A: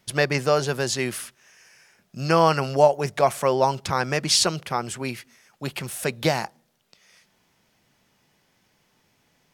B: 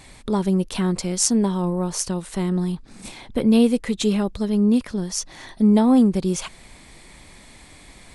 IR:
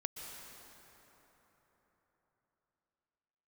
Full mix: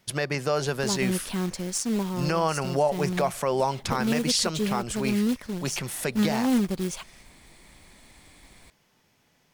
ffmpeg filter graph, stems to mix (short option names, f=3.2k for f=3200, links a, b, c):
-filter_complex "[0:a]volume=-0.5dB[a];[1:a]acrusher=bits=3:mode=log:mix=0:aa=0.000001,adelay=550,volume=-7dB[b];[a][b]amix=inputs=2:normalize=0,alimiter=limit=-13.5dB:level=0:latency=1:release=161"